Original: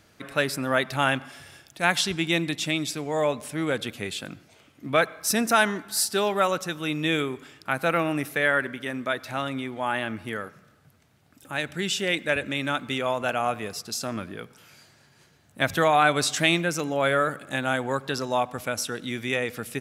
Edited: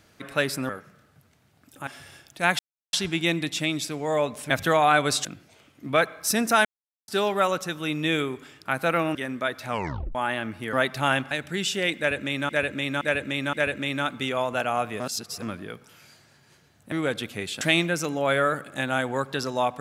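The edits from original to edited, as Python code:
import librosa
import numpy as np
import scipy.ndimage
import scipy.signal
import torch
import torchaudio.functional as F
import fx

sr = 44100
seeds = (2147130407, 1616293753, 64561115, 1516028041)

y = fx.edit(x, sr, fx.swap(start_s=0.69, length_s=0.58, other_s=10.38, other_length_s=1.18),
    fx.insert_silence(at_s=1.99, length_s=0.34),
    fx.swap(start_s=3.56, length_s=0.69, other_s=15.61, other_length_s=0.75),
    fx.silence(start_s=5.65, length_s=0.43),
    fx.cut(start_s=8.15, length_s=0.65),
    fx.tape_stop(start_s=9.32, length_s=0.48),
    fx.repeat(start_s=12.22, length_s=0.52, count=4),
    fx.reverse_span(start_s=13.69, length_s=0.42), tone=tone)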